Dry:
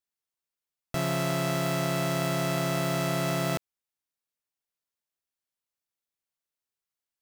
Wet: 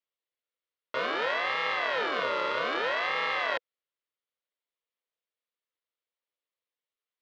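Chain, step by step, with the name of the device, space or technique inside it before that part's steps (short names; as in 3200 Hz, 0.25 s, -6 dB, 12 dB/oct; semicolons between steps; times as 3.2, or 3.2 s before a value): HPF 200 Hz; voice changer toy (ring modulator with a swept carrier 1100 Hz, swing 35%, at 0.62 Hz; speaker cabinet 490–3600 Hz, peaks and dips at 490 Hz +6 dB, 800 Hz -8 dB, 1600 Hz -5 dB, 2500 Hz -4 dB); gain +6.5 dB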